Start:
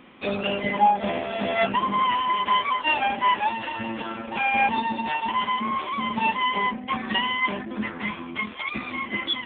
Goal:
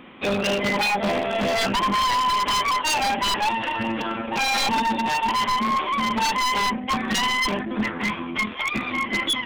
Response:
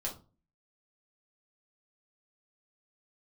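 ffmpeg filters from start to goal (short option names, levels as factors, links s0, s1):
-af "aeval=exprs='0.0841*(abs(mod(val(0)/0.0841+3,4)-2)-1)':c=same,aeval=exprs='0.0841*(cos(1*acos(clip(val(0)/0.0841,-1,1)))-cos(1*PI/2))+0.00473*(cos(2*acos(clip(val(0)/0.0841,-1,1)))-cos(2*PI/2))':c=same,volume=1.78"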